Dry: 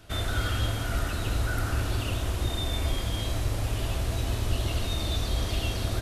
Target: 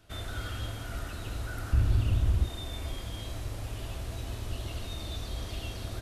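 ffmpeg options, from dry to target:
-filter_complex "[0:a]asettb=1/sr,asplit=3[a][b][c];[a]atrim=end=1.734[d];[b]atrim=start=1.73:end=2.44,asetpts=PTS-STARTPTS,afade=t=in:d=0.004:c=qsin,afade=t=out:st=0.706:d=0.004:c=qsin,bass=f=250:g=13,treble=f=4k:g=-2[e];[c]atrim=start=2.436[f];[d][e]acrossfade=d=0.004:c1=hsin:c2=qsin[g];[g][f]acrossfade=d=0.004:c1=qsin:c2=hsin,volume=-8.5dB"

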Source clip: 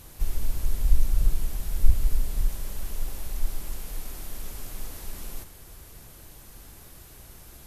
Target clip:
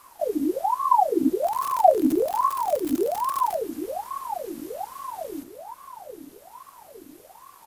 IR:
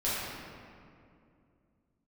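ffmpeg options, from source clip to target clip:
-filter_complex "[0:a]asettb=1/sr,asplit=3[a][b][c];[a]atrim=end=1.434[d];[b]atrim=start=1.43:end=3.56,asetpts=PTS-STARTPTS,afade=t=in:d=0.004:c=qsin,afade=t=out:st=2.126:d=0.004:c=qsin,aeval=exprs='val(0)+0.5*0.0668*sgn(val(0))':c=same[e];[c]atrim=start=3.556[f];[d][e]acrossfade=d=0.004:c1=hsin:c2=qsin[g];[g][f]acrossfade=d=0.004:c1=qsin:c2=hsin,asplit=2[h][i];[i]adelay=884,lowpass=f=1.4k:p=1,volume=-10dB,asplit=2[j][k];[k]adelay=884,lowpass=f=1.4k:p=1,volume=0.53,asplit=2[l][m];[m]adelay=884,lowpass=f=1.4k:p=1,volume=0.53,asplit=2[n][o];[o]adelay=884,lowpass=f=1.4k:p=1,volume=0.53,asplit=2[p][q];[q]adelay=884,lowpass=f=1.4k:p=1,volume=0.53,asplit=2[r][s];[s]adelay=884,lowpass=f=1.4k:p=1,volume=0.53[t];[h][j][l][n][p][r][t]amix=inputs=7:normalize=0,aeval=exprs='val(0)*sin(2*PI*690*n/s+690*0.6/1.2*sin(2*PI*1.2*n/s))':c=same,volume=-1.5dB"

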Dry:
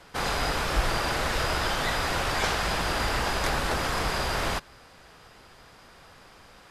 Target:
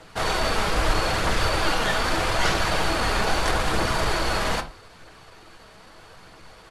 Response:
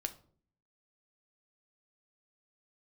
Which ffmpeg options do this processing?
-filter_complex "[0:a]aphaser=in_gain=1:out_gain=1:delay=4.7:decay=0.29:speed=0.79:type=triangular,asetrate=40440,aresample=44100,atempo=1.09051[a];[1:a]atrim=start_sample=2205,atrim=end_sample=6174[b];[a][b]afir=irnorm=-1:irlink=0,volume=4dB"

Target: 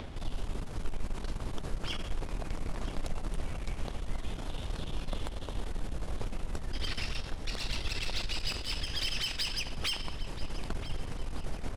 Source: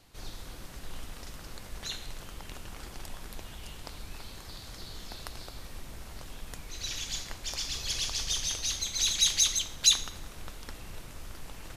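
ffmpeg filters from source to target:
-filter_complex "[0:a]tiltshelf=f=1.5k:g=6,acrossover=split=6400[a][b];[a]acompressor=mode=upward:threshold=-36dB:ratio=2.5[c];[c][b]amix=inputs=2:normalize=0,alimiter=level_in=1dB:limit=-24dB:level=0:latency=1:release=278,volume=-1dB,asetrate=35002,aresample=44100,atempo=1.25992,aeval=exprs='0.0596*(cos(1*acos(clip(val(0)/0.0596,-1,1)))-cos(1*PI/2))+0.0106*(cos(2*acos(clip(val(0)/0.0596,-1,1)))-cos(2*PI/2))+0.00422*(cos(3*acos(clip(val(0)/0.0596,-1,1)))-cos(3*PI/2))+0.00531*(cos(5*acos(clip(val(0)/0.0596,-1,1)))-cos(5*PI/2))+0.00299*(cos(6*acos(clip(val(0)/0.0596,-1,1)))-cos(6*PI/2))':c=same,asplit=2[d][e];[e]adelay=980,lowpass=f=4k:p=1,volume=-13dB,asplit=2[f][g];[g]adelay=980,lowpass=f=4k:p=1,volume=0.54,asplit=2[h][i];[i]adelay=980,lowpass=f=4k:p=1,volume=0.54,asplit=2[j][k];[k]adelay=980,lowpass=f=4k:p=1,volume=0.54,asplit=2[l][m];[m]adelay=980,lowpass=f=4k:p=1,volume=0.54,asplit=2[n][o];[o]adelay=980,lowpass=f=4k:p=1,volume=0.54[p];[d][f][h][j][l][n][p]amix=inputs=7:normalize=0,volume=2.5dB"

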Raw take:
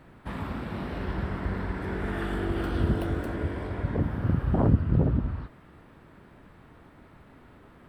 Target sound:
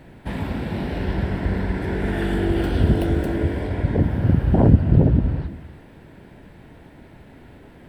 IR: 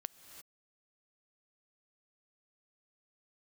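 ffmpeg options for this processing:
-filter_complex "[0:a]equalizer=f=1.2k:w=3.7:g=-14,asplit=2[a][b];[1:a]atrim=start_sample=2205[c];[b][c]afir=irnorm=-1:irlink=0,volume=7.5dB[d];[a][d]amix=inputs=2:normalize=0"

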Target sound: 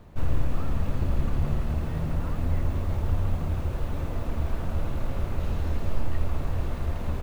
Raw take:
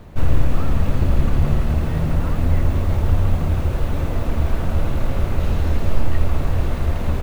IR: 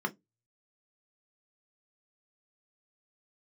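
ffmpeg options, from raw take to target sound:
-filter_complex "[0:a]asplit=2[a][b];[b]highpass=f=800:w=0.5412,highpass=f=800:w=1.3066[c];[1:a]atrim=start_sample=2205[d];[c][d]afir=irnorm=-1:irlink=0,volume=-22.5dB[e];[a][e]amix=inputs=2:normalize=0,volume=-8.5dB"

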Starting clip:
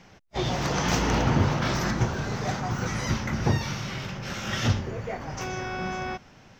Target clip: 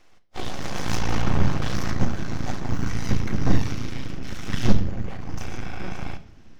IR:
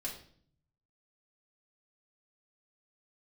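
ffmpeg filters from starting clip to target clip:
-filter_complex "[0:a]asubboost=boost=6:cutoff=160,aeval=exprs='0.75*(cos(1*acos(clip(val(0)/0.75,-1,1)))-cos(1*PI/2))+0.119*(cos(8*acos(clip(val(0)/0.75,-1,1)))-cos(8*PI/2))':c=same,aeval=exprs='abs(val(0))':c=same,asplit=2[a][b];[1:a]atrim=start_sample=2205[c];[b][c]afir=irnorm=-1:irlink=0,volume=-5dB[d];[a][d]amix=inputs=2:normalize=0,volume=-8dB"

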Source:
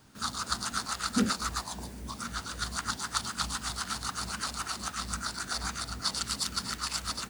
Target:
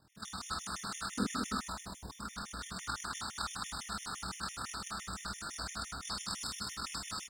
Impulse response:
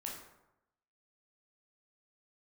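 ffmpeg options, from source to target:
-filter_complex "[0:a]tremolo=f=39:d=0.71,aecho=1:1:211:0.631[a];[1:a]atrim=start_sample=2205,atrim=end_sample=4410,asetrate=33516,aresample=44100[b];[a][b]afir=irnorm=-1:irlink=0,afftfilt=real='re*gt(sin(2*PI*5.9*pts/sr)*(1-2*mod(floor(b*sr/1024/1800),2)),0)':imag='im*gt(sin(2*PI*5.9*pts/sr)*(1-2*mod(floor(b*sr/1024/1800),2)),0)':win_size=1024:overlap=0.75,volume=-1dB"

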